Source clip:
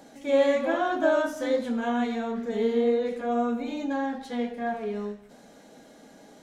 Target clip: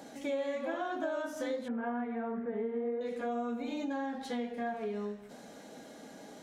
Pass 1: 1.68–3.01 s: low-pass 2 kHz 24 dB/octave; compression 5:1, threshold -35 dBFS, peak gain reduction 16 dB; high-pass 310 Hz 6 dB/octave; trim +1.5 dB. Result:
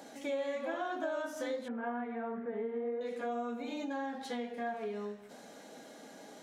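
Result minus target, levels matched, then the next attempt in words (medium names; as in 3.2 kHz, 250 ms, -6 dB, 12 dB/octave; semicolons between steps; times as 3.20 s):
125 Hz band -2.5 dB
1.68–3.01 s: low-pass 2 kHz 24 dB/octave; compression 5:1, threshold -35 dBFS, peak gain reduction 16 dB; high-pass 83 Hz 6 dB/octave; trim +1.5 dB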